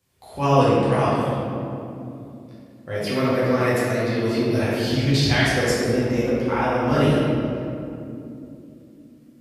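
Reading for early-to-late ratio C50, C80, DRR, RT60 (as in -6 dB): -3.5 dB, -1.0 dB, -10.0 dB, 2.8 s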